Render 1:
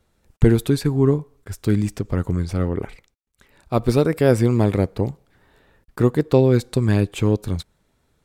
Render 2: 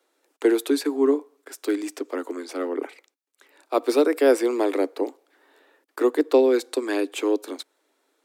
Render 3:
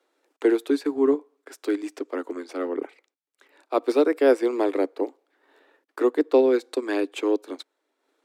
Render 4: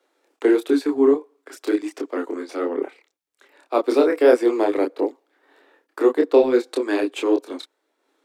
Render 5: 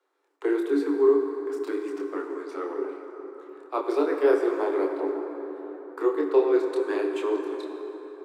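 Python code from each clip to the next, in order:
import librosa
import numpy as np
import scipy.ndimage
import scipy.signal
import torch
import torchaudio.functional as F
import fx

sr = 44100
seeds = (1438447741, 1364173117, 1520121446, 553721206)

y1 = scipy.signal.sosfilt(scipy.signal.butter(16, 270.0, 'highpass', fs=sr, output='sos'), x)
y2 = fx.transient(y1, sr, attack_db=-1, sustain_db=-6)
y2 = fx.high_shelf(y2, sr, hz=6500.0, db=-10.5)
y3 = fx.chorus_voices(y2, sr, voices=2, hz=1.5, base_ms=27, depth_ms=3.0, mix_pct=40)
y3 = F.gain(torch.from_numpy(y3), 6.5).numpy()
y4 = scipy.signal.sosfilt(scipy.signal.cheby1(6, 9, 280.0, 'highpass', fs=sr, output='sos'), y3)
y4 = fx.rev_plate(y4, sr, seeds[0], rt60_s=4.4, hf_ratio=0.5, predelay_ms=0, drr_db=3.5)
y4 = F.gain(torch.from_numpy(y4), -3.0).numpy()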